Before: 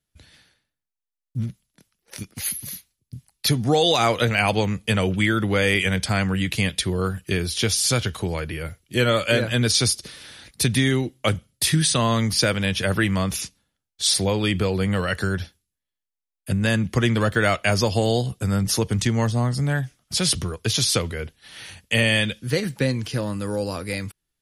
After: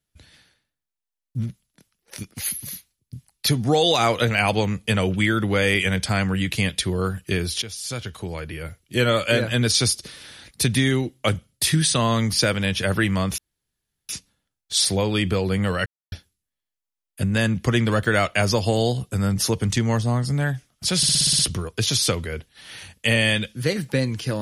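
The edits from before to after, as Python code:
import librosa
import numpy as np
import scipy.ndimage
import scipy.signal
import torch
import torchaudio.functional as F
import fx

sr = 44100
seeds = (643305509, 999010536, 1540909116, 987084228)

y = fx.edit(x, sr, fx.fade_in_from(start_s=7.62, length_s=1.38, floor_db=-15.5),
    fx.insert_room_tone(at_s=13.38, length_s=0.71),
    fx.silence(start_s=15.15, length_s=0.26),
    fx.stutter(start_s=20.26, slice_s=0.06, count=8), tone=tone)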